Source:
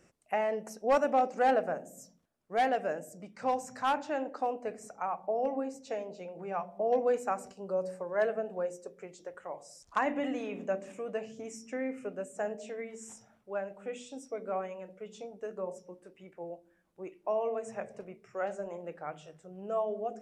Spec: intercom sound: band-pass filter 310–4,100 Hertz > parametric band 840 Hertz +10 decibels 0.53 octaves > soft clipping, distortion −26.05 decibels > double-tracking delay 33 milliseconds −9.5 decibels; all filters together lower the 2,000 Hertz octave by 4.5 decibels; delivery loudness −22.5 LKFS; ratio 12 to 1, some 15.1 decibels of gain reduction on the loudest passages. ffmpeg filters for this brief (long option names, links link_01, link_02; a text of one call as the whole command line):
ffmpeg -i in.wav -filter_complex "[0:a]equalizer=frequency=2000:width_type=o:gain=-7,acompressor=threshold=-38dB:ratio=12,highpass=310,lowpass=4100,equalizer=frequency=840:width_type=o:width=0.53:gain=10,asoftclip=threshold=-24dB,asplit=2[link_01][link_02];[link_02]adelay=33,volume=-9.5dB[link_03];[link_01][link_03]amix=inputs=2:normalize=0,volume=19dB" out.wav